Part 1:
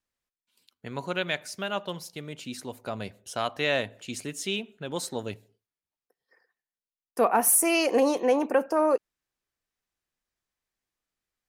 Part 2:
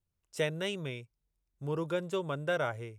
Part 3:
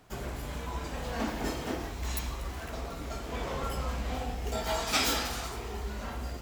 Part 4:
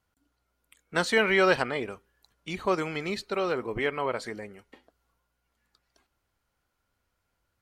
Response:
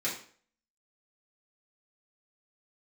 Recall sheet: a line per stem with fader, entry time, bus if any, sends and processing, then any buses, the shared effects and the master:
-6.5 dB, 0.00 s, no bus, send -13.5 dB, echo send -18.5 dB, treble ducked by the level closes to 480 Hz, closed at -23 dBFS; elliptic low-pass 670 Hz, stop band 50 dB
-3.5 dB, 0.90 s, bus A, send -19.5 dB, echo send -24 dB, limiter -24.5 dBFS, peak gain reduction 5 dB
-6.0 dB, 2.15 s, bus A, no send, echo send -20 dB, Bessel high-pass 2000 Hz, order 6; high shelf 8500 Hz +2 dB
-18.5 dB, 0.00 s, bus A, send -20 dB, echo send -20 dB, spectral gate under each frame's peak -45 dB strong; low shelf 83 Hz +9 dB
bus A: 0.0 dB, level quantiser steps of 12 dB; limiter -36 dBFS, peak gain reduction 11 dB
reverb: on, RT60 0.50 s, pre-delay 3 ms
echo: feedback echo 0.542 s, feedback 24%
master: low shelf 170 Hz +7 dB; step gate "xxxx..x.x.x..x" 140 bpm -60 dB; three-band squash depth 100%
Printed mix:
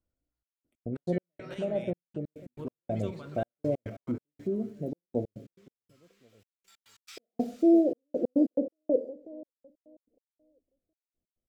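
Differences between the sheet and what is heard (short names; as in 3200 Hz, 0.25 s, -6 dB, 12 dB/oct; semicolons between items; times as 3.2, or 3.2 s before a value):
stem 1 -6.5 dB -> +1.5 dB; stem 3 -6.0 dB -> -17.0 dB; master: missing three-band squash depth 100%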